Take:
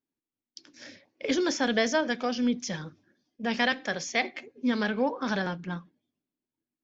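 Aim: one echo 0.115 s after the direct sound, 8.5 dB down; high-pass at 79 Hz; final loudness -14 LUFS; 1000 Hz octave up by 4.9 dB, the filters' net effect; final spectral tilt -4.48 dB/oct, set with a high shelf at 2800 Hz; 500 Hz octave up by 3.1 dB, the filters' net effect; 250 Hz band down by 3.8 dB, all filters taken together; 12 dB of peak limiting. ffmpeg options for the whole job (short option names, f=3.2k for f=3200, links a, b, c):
-af "highpass=79,equalizer=f=250:t=o:g=-5.5,equalizer=f=500:t=o:g=3.5,equalizer=f=1k:t=o:g=6.5,highshelf=f=2.8k:g=-7.5,alimiter=limit=-22.5dB:level=0:latency=1,aecho=1:1:115:0.376,volume=19dB"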